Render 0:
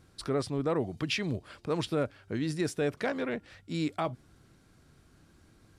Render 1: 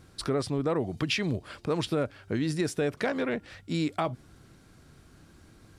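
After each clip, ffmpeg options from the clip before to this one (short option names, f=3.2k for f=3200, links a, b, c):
-af "acompressor=threshold=-31dB:ratio=2.5,volume=5.5dB"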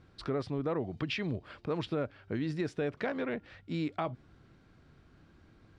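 -af "lowpass=3.5k,volume=-5dB"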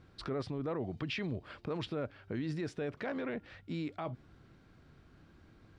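-af "alimiter=level_in=5dB:limit=-24dB:level=0:latency=1:release=19,volume=-5dB"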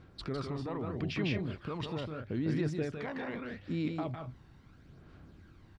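-af "aecho=1:1:154.5|186.6:0.631|0.316,aphaser=in_gain=1:out_gain=1:delay=1.1:decay=0.43:speed=0.78:type=sinusoidal,volume=-1dB"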